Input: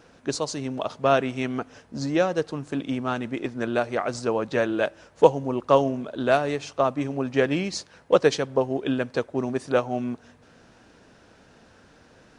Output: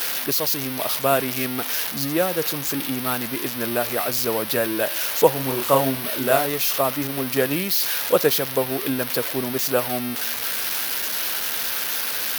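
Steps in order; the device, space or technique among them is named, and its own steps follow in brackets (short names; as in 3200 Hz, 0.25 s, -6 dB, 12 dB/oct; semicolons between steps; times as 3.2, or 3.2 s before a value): budget class-D amplifier (switching dead time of 0.061 ms; switching spikes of -9.5 dBFS); 5.33–6.46 doubler 30 ms -4.5 dB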